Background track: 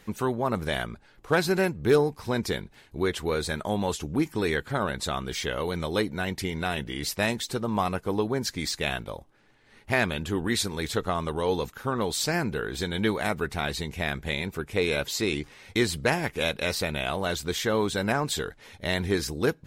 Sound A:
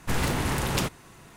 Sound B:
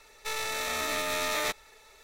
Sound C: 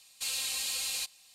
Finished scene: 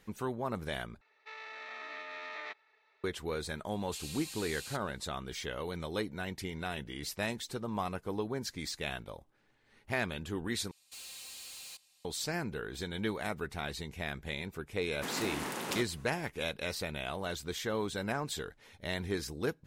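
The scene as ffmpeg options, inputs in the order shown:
-filter_complex "[3:a]asplit=2[a][b];[0:a]volume=-9dB[c];[2:a]highpass=390,equalizer=f=530:t=q:w=4:g=-6,equalizer=f=1.9k:t=q:w=4:g=4,equalizer=f=3.5k:t=q:w=4:g=-4,lowpass=f=3.8k:w=0.5412,lowpass=f=3.8k:w=1.3066[d];[b]asoftclip=type=tanh:threshold=-35dB[e];[1:a]highpass=f=200:w=0.5412,highpass=f=200:w=1.3066[f];[c]asplit=3[g][h][i];[g]atrim=end=1.014[j];[d]atrim=end=2.03,asetpts=PTS-STARTPTS,volume=-12.5dB[k];[h]atrim=start=3.036:end=10.714[l];[e]atrim=end=1.34,asetpts=PTS-STARTPTS,volume=-9dB[m];[i]atrim=start=12.046[n];[a]atrim=end=1.34,asetpts=PTS-STARTPTS,volume=-11.5dB,afade=t=in:d=0.004:c=hsin,afade=t=out:st=1.336:d=0.004:c=hsin,adelay=3710[o];[f]atrim=end=1.36,asetpts=PTS-STARTPTS,volume=-8.5dB,afade=t=in:d=0.004:c=hsin,afade=t=out:st=1.356:d=0.004:c=hsin,adelay=14940[p];[j][k]acrossfade=d=0.004:c1=hsin:c2=hsin[q];[q][l]acrossfade=d=0.004:c1=hsin:c2=hsin[r];[r][m]acrossfade=d=0.004:c1=hsin:c2=hsin[s];[s][n]acrossfade=d=0.004:c1=hsin:c2=hsin[t];[t][o][p]amix=inputs=3:normalize=0"

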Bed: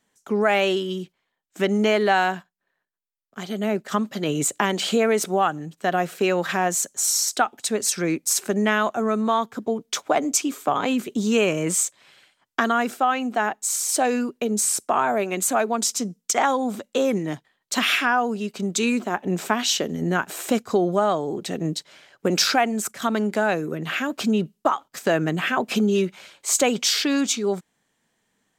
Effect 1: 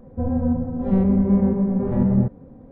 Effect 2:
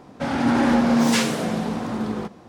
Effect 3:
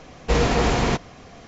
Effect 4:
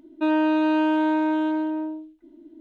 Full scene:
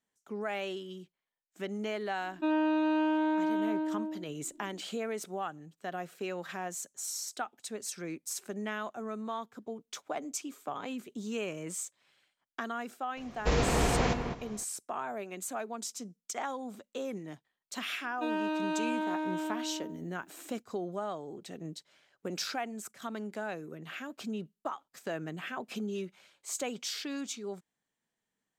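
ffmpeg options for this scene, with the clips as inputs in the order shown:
-filter_complex "[4:a]asplit=2[a][b];[0:a]volume=-16dB[c];[3:a]asplit=2[d][e];[e]adelay=205,lowpass=f=2k:p=1,volume=-6dB,asplit=2[f][g];[g]adelay=205,lowpass=f=2k:p=1,volume=0.23,asplit=2[h][i];[i]adelay=205,lowpass=f=2k:p=1,volume=0.23[j];[d][f][h][j]amix=inputs=4:normalize=0[k];[b]aemphasis=mode=production:type=bsi[l];[a]atrim=end=2.6,asetpts=PTS-STARTPTS,volume=-7.5dB,afade=t=in:d=0.004:c=hsin,afade=t=out:st=2.596:d=0.004:c=hsin,adelay=2210[m];[k]atrim=end=1.47,asetpts=PTS-STARTPTS,volume=-8dB,afade=t=in:d=0.004:c=hsin,afade=t=out:st=1.466:d=0.004:c=hsin,adelay=13170[n];[l]atrim=end=2.6,asetpts=PTS-STARTPTS,volume=-9.5dB,afade=t=in:d=0.004:c=hsin,afade=t=out:st=2.596:d=0.004:c=hsin,adelay=18000[o];[c][m][n][o]amix=inputs=4:normalize=0"

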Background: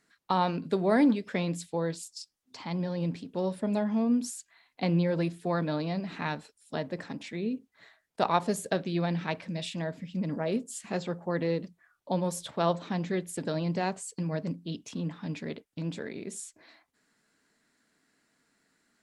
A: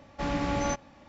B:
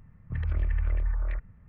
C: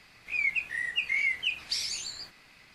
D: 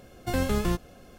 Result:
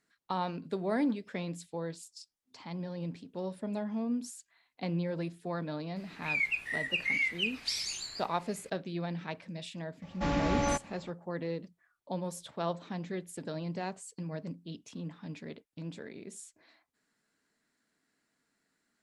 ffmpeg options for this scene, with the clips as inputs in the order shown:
-filter_complex "[0:a]volume=-7dB[a];[3:a]atrim=end=2.74,asetpts=PTS-STARTPTS,volume=-2.5dB,afade=t=in:d=0.004:c=hsin,afade=t=out:st=2.736:d=0.004:c=hsin,adelay=5960[b];[1:a]atrim=end=1.08,asetpts=PTS-STARTPTS,volume=-0.5dB,afade=t=in:d=0.004:c=hsin,afade=t=out:st=1.076:d=0.004:c=hsin,adelay=441882S[c];[a][b][c]amix=inputs=3:normalize=0"

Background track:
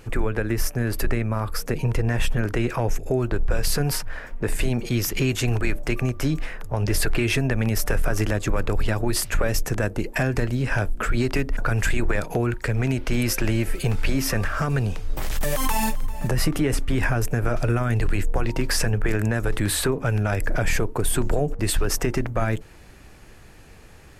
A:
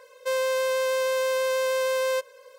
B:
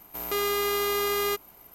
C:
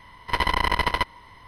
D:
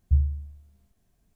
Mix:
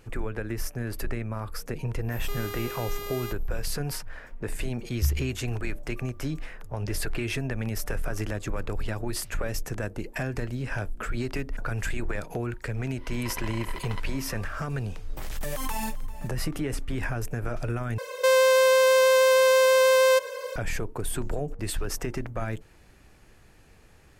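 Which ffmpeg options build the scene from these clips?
-filter_complex "[0:a]volume=-8dB[a];[3:a]acompressor=threshold=-32dB:ratio=6:attack=3.2:release=140:knee=1:detection=peak[b];[1:a]alimiter=level_in=25.5dB:limit=-1dB:release=50:level=0:latency=1[c];[a]asplit=2[d][e];[d]atrim=end=17.984[f];[c]atrim=end=2.58,asetpts=PTS-STARTPTS,volume=-11dB[g];[e]atrim=start=20.556[h];[2:a]atrim=end=1.74,asetpts=PTS-STARTPTS,volume=-10.5dB,afade=t=in:d=0.1,afade=t=out:st=1.64:d=0.1,adelay=1970[i];[4:a]atrim=end=1.35,asetpts=PTS-STARTPTS,volume=-4dB,afade=t=in:d=0.004:c=hsin,afade=t=out:st=1.346:d=0.004:c=hsin,adelay=4910[j];[b]atrim=end=1.47,asetpts=PTS-STARTPTS,volume=-2dB,afade=t=in:d=0.1,afade=t=out:st=1.37:d=0.1,adelay=12970[k];[f][g]acrossfade=d=0.004:c1=hsin:c2=hsin[l];[l][h]acrossfade=d=0.004:c1=hsin:c2=hsin[m];[m][i][j][k]amix=inputs=4:normalize=0"

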